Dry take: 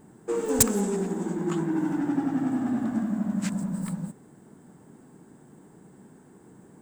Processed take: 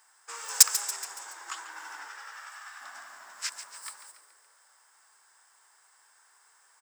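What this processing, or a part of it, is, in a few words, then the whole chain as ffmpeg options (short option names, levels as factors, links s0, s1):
headphones lying on a table: -filter_complex "[0:a]asettb=1/sr,asplit=3[s0][s1][s2];[s0]atrim=end=2.084[s3];[s1]atrim=start=2.08:end=2.81,asetpts=PTS-STARTPTS,afade=t=in:d=0.004:c=qsin,afade=t=out:st=0.726:d=0.004:c=qsin,highpass=f=1000:w=0.5412,highpass=f=1000:w=1.3066[s4];[s2]atrim=start=2.806[s5];[s3][s4]acrossfade=d=0.004:c1=hsin:c2=qsin[s6];[s6][s5]acrossfade=d=0.004:c1=qsin:c2=hsin,asplit=6[s7][s8][s9][s10][s11][s12];[s8]adelay=141,afreqshift=77,volume=0.224[s13];[s9]adelay=282,afreqshift=154,volume=0.119[s14];[s10]adelay=423,afreqshift=231,volume=0.0631[s15];[s11]adelay=564,afreqshift=308,volume=0.0335[s16];[s12]adelay=705,afreqshift=385,volume=0.0176[s17];[s7][s13][s14][s15][s16][s17]amix=inputs=6:normalize=0,highpass=f=1100:w=0.5412,highpass=f=1100:w=1.3066,equalizer=f=5200:t=o:w=0.36:g=12,volume=1.26"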